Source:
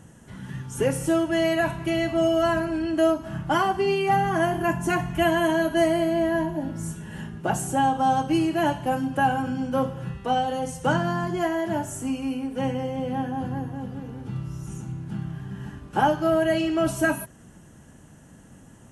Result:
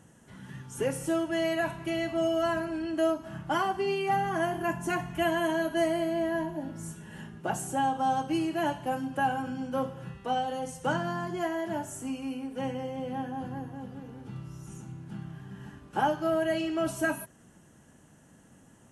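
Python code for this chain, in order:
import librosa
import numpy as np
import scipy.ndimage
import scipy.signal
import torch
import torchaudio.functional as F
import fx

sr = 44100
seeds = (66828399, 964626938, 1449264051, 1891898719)

y = fx.low_shelf(x, sr, hz=120.0, db=-8.5)
y = y * librosa.db_to_amplitude(-5.5)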